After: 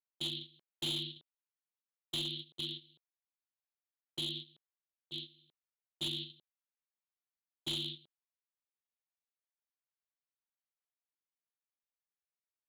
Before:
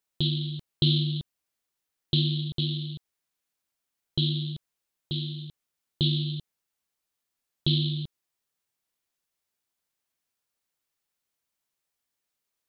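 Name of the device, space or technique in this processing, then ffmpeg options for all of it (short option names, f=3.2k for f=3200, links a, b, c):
walkie-talkie: -af "highpass=560,lowpass=2.6k,asoftclip=type=hard:threshold=-32.5dB,agate=range=-16dB:threshold=-42dB:ratio=16:detection=peak,volume=1dB"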